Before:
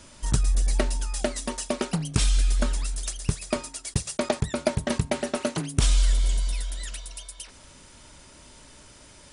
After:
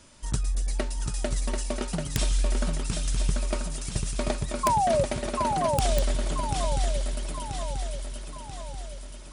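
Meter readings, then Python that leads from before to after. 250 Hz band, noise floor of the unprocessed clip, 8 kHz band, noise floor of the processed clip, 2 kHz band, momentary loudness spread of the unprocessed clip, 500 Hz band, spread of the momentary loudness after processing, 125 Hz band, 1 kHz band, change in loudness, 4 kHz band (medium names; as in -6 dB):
-3.0 dB, -50 dBFS, -2.5 dB, -40 dBFS, -2.5 dB, 11 LU, +1.5 dB, 14 LU, -2.0 dB, +9.0 dB, -1.5 dB, -2.5 dB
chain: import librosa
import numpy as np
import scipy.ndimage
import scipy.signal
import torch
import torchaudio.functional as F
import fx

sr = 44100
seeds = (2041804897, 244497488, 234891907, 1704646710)

y = fx.spec_paint(x, sr, seeds[0], shape='fall', start_s=4.63, length_s=0.41, low_hz=530.0, high_hz=1100.0, level_db=-18.0)
y = fx.echo_swing(y, sr, ms=985, ratio=3, feedback_pct=50, wet_db=-4.0)
y = (np.mod(10.0 ** (7.0 / 20.0) * y + 1.0, 2.0) - 1.0) / 10.0 ** (7.0 / 20.0)
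y = y * librosa.db_to_amplitude(-5.0)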